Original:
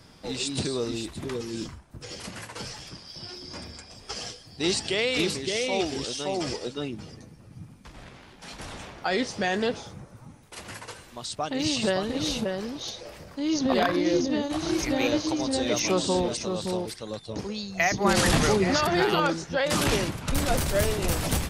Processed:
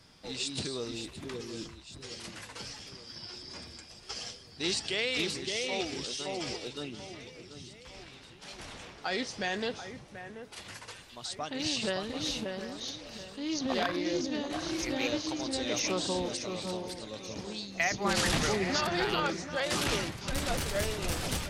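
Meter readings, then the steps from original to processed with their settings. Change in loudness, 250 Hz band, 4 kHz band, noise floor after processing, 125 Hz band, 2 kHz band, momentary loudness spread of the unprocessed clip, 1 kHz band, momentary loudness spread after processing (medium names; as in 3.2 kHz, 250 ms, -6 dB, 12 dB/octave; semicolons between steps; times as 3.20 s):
-6.5 dB, -8.0 dB, -3.0 dB, -52 dBFS, -8.0 dB, -4.5 dB, 18 LU, -6.5 dB, 16 LU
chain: peaking EQ 4 kHz +5.5 dB 2.8 oct; echo whose repeats swap between lows and highs 734 ms, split 2.3 kHz, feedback 64%, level -11 dB; loudspeaker Doppler distortion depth 0.15 ms; trim -8.5 dB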